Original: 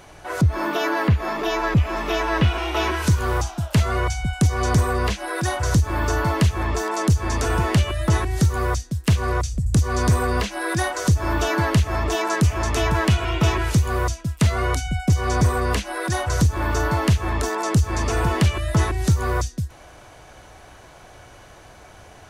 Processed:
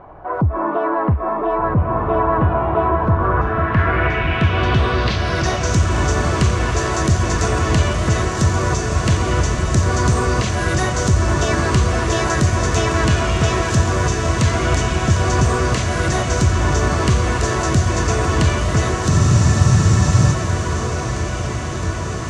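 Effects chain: treble shelf 4.7 kHz -5.5 dB; band-stop 870 Hz, Q 14; in parallel at -3.5 dB: saturation -24.5 dBFS, distortion -6 dB; on the sum: echo that smears into a reverb 1584 ms, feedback 69%, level -3 dB; low-pass sweep 970 Hz -> 7.2 kHz, 3.05–5.80 s; spectral freeze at 19.11 s, 1.23 s; trim -1 dB

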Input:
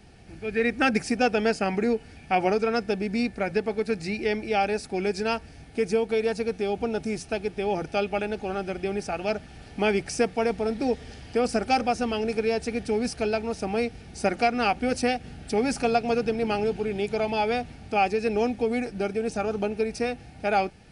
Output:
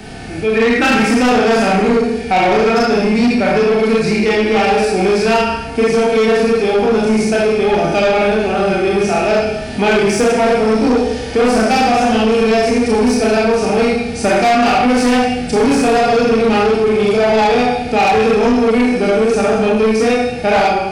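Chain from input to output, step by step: Schroeder reverb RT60 0.79 s, combs from 25 ms, DRR -5.5 dB; harmonic-percussive split harmonic +7 dB; saturation -13 dBFS, distortion -10 dB; three bands compressed up and down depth 40%; trim +4.5 dB

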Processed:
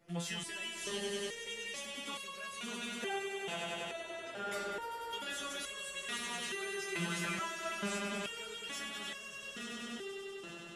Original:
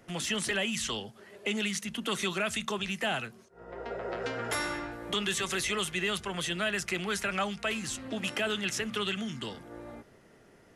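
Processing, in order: echo with a slow build-up 97 ms, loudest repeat 5, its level -8 dB; resonator arpeggio 2.3 Hz 170–550 Hz; trim +3.5 dB

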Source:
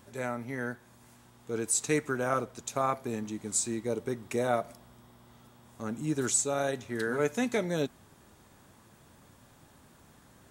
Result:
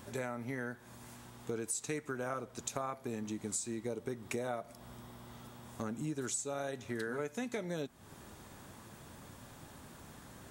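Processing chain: compression 6:1, threshold -41 dBFS, peak gain reduction 17 dB; trim +5 dB

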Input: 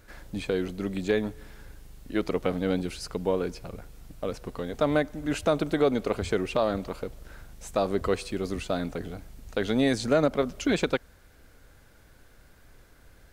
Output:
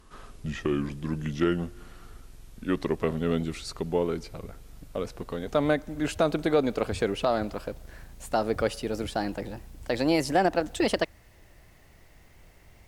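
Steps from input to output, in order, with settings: gliding tape speed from 74% -> 133%

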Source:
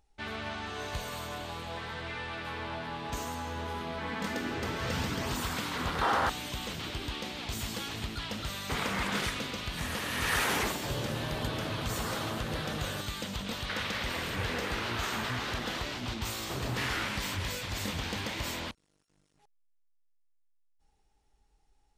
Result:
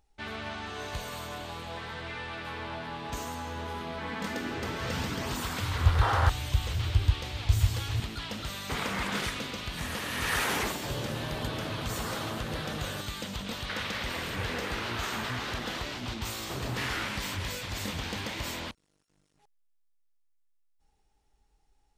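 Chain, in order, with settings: 5.60–8.00 s: resonant low shelf 140 Hz +12 dB, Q 3

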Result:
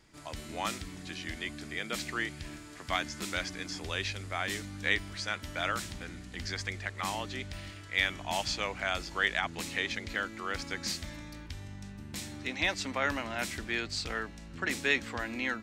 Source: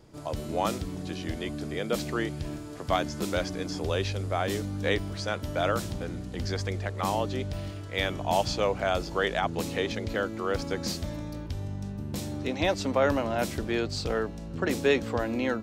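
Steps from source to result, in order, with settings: graphic EQ 125/500/2000/4000/8000 Hz -6/-8/+10/+3/+6 dB; trim -6 dB

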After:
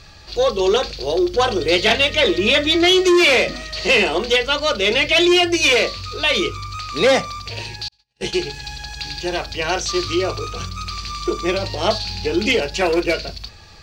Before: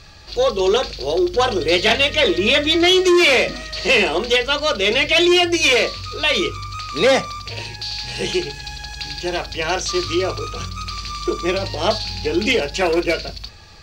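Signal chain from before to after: 7.88–8.33 s: gate -22 dBFS, range -51 dB

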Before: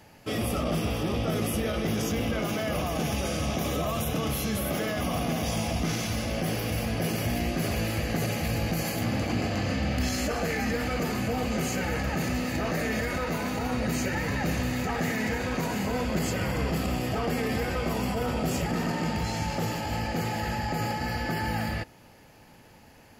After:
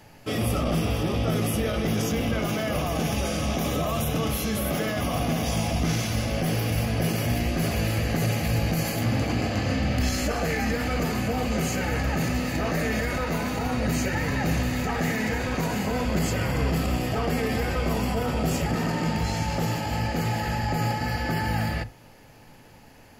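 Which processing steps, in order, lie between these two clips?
on a send: tilt EQ -3 dB/octave + reverberation, pre-delay 7 ms, DRR 16.5 dB; on the sum: trim +2 dB

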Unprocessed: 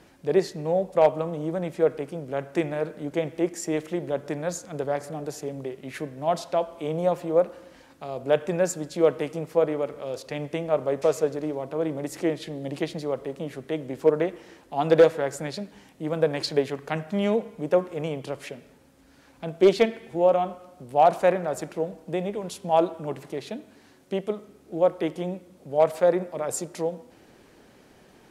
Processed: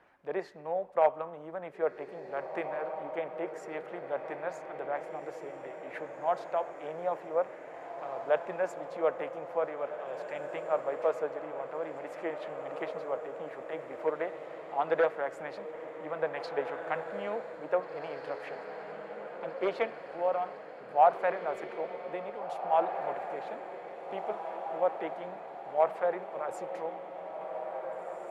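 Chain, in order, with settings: three-band isolator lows -17 dB, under 590 Hz, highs -24 dB, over 2.2 kHz; harmonic-percussive split harmonic -5 dB; echo that smears into a reverb 1881 ms, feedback 60%, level -8 dB

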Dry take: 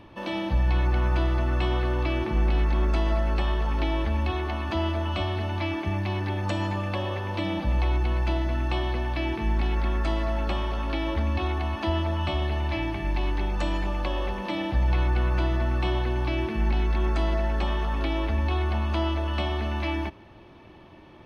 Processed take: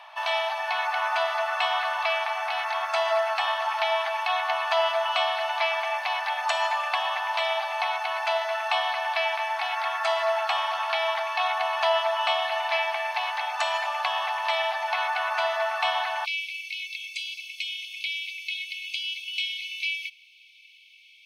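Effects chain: brick-wall FIR high-pass 610 Hz, from 16.24 s 2.1 kHz; trim +8.5 dB

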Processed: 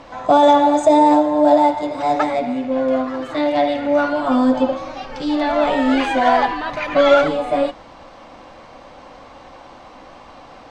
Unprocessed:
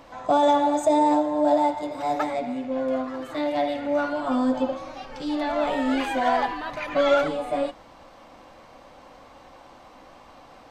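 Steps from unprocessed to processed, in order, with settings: low-pass 6.8 kHz 12 dB/octave; trim +7.5 dB

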